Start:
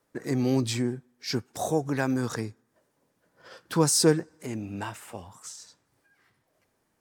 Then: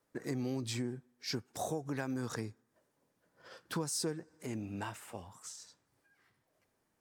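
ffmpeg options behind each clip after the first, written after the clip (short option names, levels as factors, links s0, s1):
-af "acompressor=threshold=0.0447:ratio=8,volume=0.531"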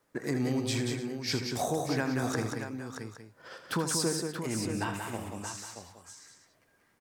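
-filter_complex "[0:a]acrossover=split=2200[s0][s1];[s0]crystalizer=i=4.5:c=0[s2];[s2][s1]amix=inputs=2:normalize=0,aecho=1:1:79|183|294|627|816:0.316|0.531|0.158|0.398|0.15,volume=1.78"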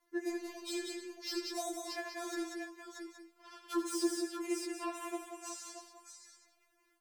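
-filter_complex "[0:a]acrossover=split=110|1000[s0][s1][s2];[s2]asoftclip=type=tanh:threshold=0.0188[s3];[s0][s1][s3]amix=inputs=3:normalize=0,afftfilt=real='re*4*eq(mod(b,16),0)':imag='im*4*eq(mod(b,16),0)':win_size=2048:overlap=0.75,volume=0.841"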